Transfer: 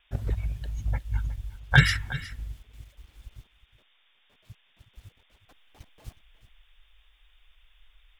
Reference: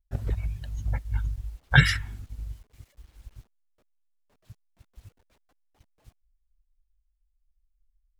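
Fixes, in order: clip repair -7 dBFS; noise print and reduce 6 dB; inverse comb 364 ms -16 dB; gain correction -11 dB, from 5.48 s

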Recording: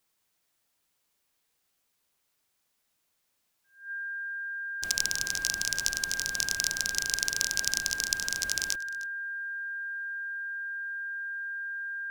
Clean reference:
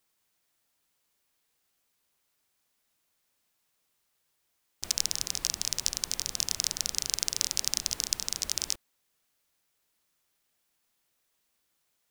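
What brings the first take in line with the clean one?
band-stop 1.6 kHz, Q 30; inverse comb 308 ms -20 dB

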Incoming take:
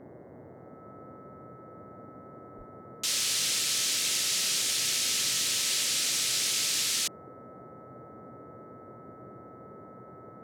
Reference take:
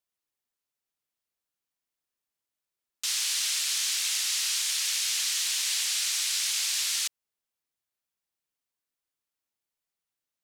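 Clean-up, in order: de-hum 125.6 Hz, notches 17; band-stop 1.3 kHz, Q 30; 2.57–2.69 s: high-pass 140 Hz 24 dB/octave; noise print and reduce 30 dB

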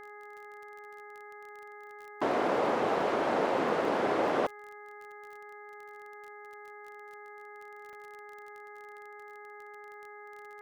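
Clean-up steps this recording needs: de-click; de-hum 415.5 Hz, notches 5; interpolate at 3.85/7.93 s, 1.8 ms

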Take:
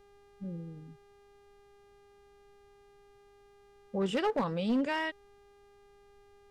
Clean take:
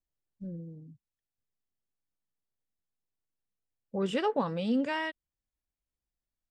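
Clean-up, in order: clip repair -24 dBFS; de-hum 403.8 Hz, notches 31; expander -53 dBFS, range -21 dB

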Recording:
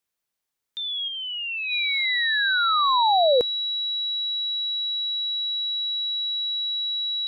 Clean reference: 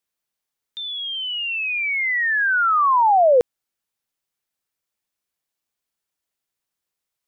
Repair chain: band-stop 3.9 kHz, Q 30; trim 0 dB, from 1.08 s +4.5 dB

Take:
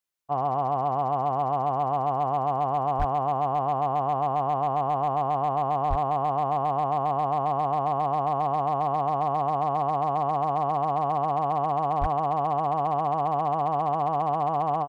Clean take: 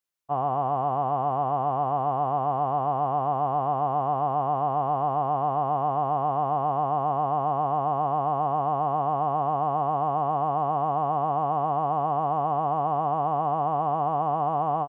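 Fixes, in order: clip repair -17.5 dBFS; 2.98–3.10 s: high-pass 140 Hz 24 dB/octave; 5.89–6.01 s: high-pass 140 Hz 24 dB/octave; 12.00–12.12 s: high-pass 140 Hz 24 dB/octave

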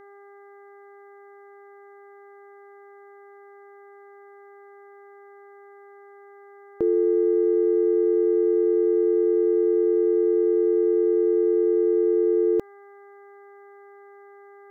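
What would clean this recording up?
de-hum 401.7 Hz, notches 5

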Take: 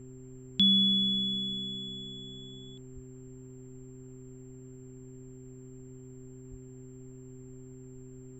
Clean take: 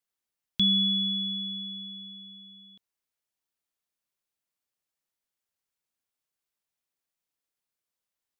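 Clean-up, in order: de-hum 128.8 Hz, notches 3; band-stop 7.4 kHz, Q 30; 2.94–3.06 s: high-pass 140 Hz 24 dB/octave; 6.50–6.62 s: high-pass 140 Hz 24 dB/octave; noise print and reduce 30 dB

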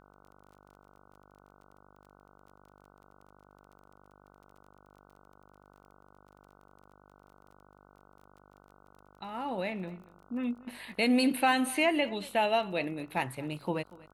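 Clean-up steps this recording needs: de-click; de-hum 49.3 Hz, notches 30; inverse comb 236 ms -21 dB

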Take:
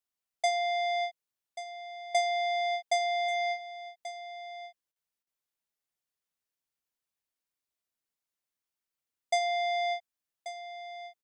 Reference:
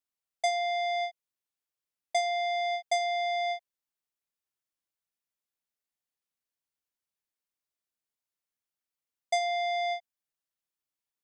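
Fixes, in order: interpolate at 4.92/5.23 s, 37 ms; inverse comb 1135 ms -13 dB

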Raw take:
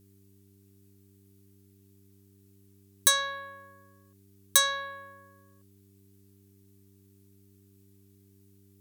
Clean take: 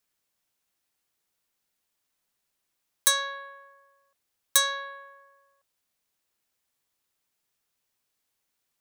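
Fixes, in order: de-hum 98.3 Hz, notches 4; expander -52 dBFS, range -21 dB

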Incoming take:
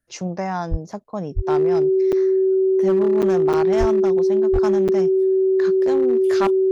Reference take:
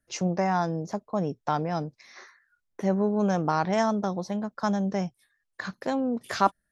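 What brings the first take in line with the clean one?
clip repair -12.5 dBFS; band-stop 380 Hz, Q 30; de-plosive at 0.70/1.35/3.79/4.52 s; interpolate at 1.04/2.12/3.22/3.53/4.88 s, 7 ms

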